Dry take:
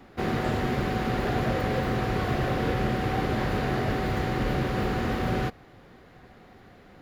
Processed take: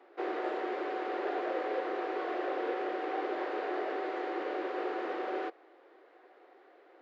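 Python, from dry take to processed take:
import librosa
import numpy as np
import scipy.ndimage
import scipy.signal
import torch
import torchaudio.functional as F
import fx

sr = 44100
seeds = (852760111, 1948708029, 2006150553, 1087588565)

y = scipy.signal.sosfilt(scipy.signal.cheby1(5, 1.0, 330.0, 'highpass', fs=sr, output='sos'), x)
y = fx.spacing_loss(y, sr, db_at_10k=29)
y = y * librosa.db_to_amplitude(-2.0)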